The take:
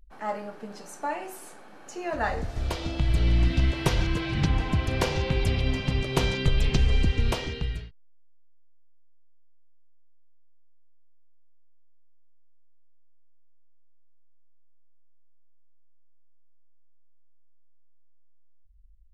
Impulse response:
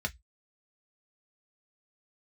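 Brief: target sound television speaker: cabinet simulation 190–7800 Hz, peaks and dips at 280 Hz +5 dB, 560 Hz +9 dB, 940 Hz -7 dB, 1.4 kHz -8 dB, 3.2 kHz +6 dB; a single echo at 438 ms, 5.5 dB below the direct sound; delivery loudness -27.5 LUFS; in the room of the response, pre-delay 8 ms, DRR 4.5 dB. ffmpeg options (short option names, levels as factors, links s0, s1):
-filter_complex "[0:a]aecho=1:1:438:0.531,asplit=2[s0][s1];[1:a]atrim=start_sample=2205,adelay=8[s2];[s1][s2]afir=irnorm=-1:irlink=0,volume=0.355[s3];[s0][s3]amix=inputs=2:normalize=0,highpass=f=190:w=0.5412,highpass=f=190:w=1.3066,equalizer=f=280:t=q:w=4:g=5,equalizer=f=560:t=q:w=4:g=9,equalizer=f=940:t=q:w=4:g=-7,equalizer=f=1400:t=q:w=4:g=-8,equalizer=f=3200:t=q:w=4:g=6,lowpass=f=7800:w=0.5412,lowpass=f=7800:w=1.3066"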